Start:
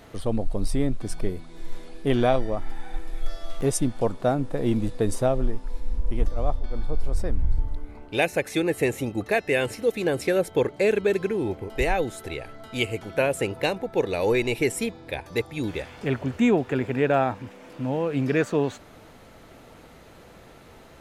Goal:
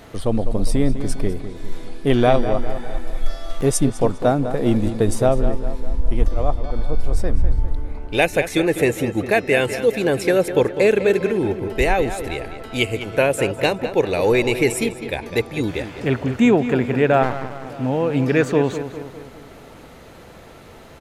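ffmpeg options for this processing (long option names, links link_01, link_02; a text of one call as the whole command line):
ffmpeg -i in.wav -filter_complex "[0:a]asplit=2[link_01][link_02];[link_02]adelay=202,lowpass=frequency=3700:poles=1,volume=-10.5dB,asplit=2[link_03][link_04];[link_04]adelay=202,lowpass=frequency=3700:poles=1,volume=0.53,asplit=2[link_05][link_06];[link_06]adelay=202,lowpass=frequency=3700:poles=1,volume=0.53,asplit=2[link_07][link_08];[link_08]adelay=202,lowpass=frequency=3700:poles=1,volume=0.53,asplit=2[link_09][link_10];[link_10]adelay=202,lowpass=frequency=3700:poles=1,volume=0.53,asplit=2[link_11][link_12];[link_12]adelay=202,lowpass=frequency=3700:poles=1,volume=0.53[link_13];[link_01][link_03][link_05][link_07][link_09][link_11][link_13]amix=inputs=7:normalize=0,asplit=3[link_14][link_15][link_16];[link_14]afade=type=out:start_time=17.22:duration=0.02[link_17];[link_15]aeval=exprs='max(val(0),0)':channel_layout=same,afade=type=in:start_time=17.22:duration=0.02,afade=type=out:start_time=17.65:duration=0.02[link_18];[link_16]afade=type=in:start_time=17.65:duration=0.02[link_19];[link_17][link_18][link_19]amix=inputs=3:normalize=0,volume=5.5dB" out.wav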